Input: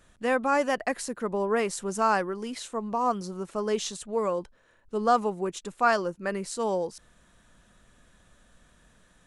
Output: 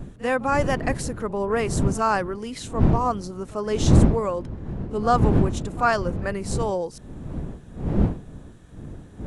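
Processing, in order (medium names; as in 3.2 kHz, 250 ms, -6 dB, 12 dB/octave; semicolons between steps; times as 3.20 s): wind noise 190 Hz -27 dBFS; pre-echo 41 ms -19 dB; trim +2 dB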